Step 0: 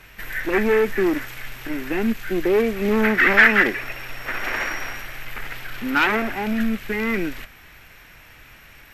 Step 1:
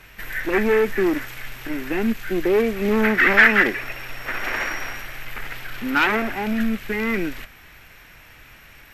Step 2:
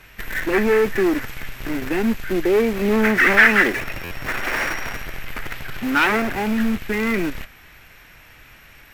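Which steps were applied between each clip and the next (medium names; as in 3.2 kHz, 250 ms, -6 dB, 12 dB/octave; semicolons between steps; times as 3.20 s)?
no audible change
in parallel at -9.5 dB: Schmitt trigger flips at -29 dBFS; on the sum: buffer glitch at 4.04 s, samples 512, times 5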